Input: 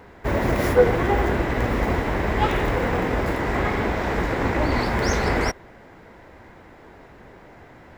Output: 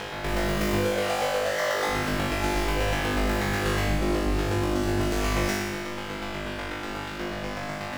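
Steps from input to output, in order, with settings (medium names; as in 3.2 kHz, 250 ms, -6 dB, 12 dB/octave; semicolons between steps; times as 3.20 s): 0.83–1.86 s: formants replaced by sine waves; 3.84–5.14 s: resonant low shelf 540 Hz +12 dB, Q 1.5; fuzz box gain 42 dB, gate -44 dBFS; peak limiter -21.5 dBFS, peak gain reduction 11 dB; square tremolo 8.2 Hz, depth 65%, duty 15%; compression, threshold -31 dBFS, peak gain reduction 7 dB; flutter echo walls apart 3.4 m, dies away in 1.2 s; reverberation RT60 0.55 s, pre-delay 6 ms, DRR 6 dB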